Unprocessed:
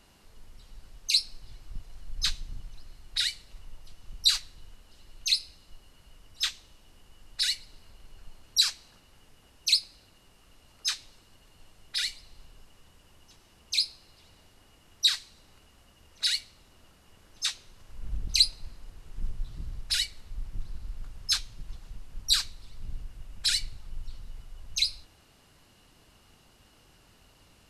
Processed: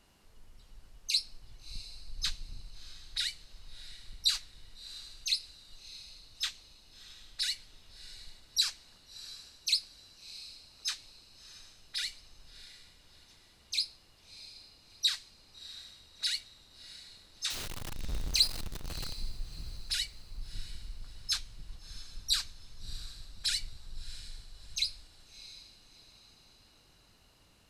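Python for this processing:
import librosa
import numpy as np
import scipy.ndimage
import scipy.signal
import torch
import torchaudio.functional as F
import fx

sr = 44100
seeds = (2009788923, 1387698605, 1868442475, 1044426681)

y = fx.zero_step(x, sr, step_db=-28.0, at=(17.5, 19.13))
y = fx.echo_diffused(y, sr, ms=673, feedback_pct=43, wet_db=-15)
y = y * librosa.db_to_amplitude(-5.5)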